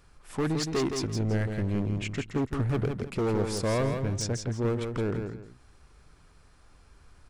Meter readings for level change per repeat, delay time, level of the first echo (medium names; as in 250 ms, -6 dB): -11.5 dB, 166 ms, -6.0 dB